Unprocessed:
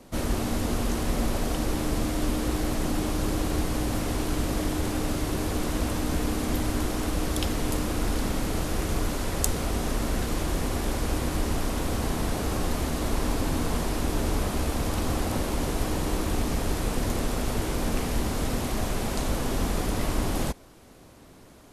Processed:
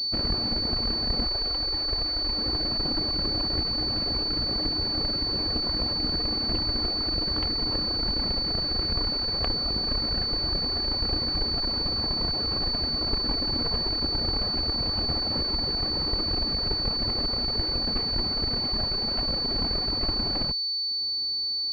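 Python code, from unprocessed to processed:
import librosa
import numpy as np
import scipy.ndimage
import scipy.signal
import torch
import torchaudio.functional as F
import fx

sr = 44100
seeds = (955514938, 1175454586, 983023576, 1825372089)

y = fx.dereverb_blind(x, sr, rt60_s=0.97)
y = fx.peak_eq(y, sr, hz=190.0, db=-15.0, octaves=1.2, at=(1.24, 2.38))
y = fx.cheby_harmonics(y, sr, harmonics=(3, 8), levels_db=(-21, -20), full_scale_db=-4.0)
y = fx.pwm(y, sr, carrier_hz=4500.0)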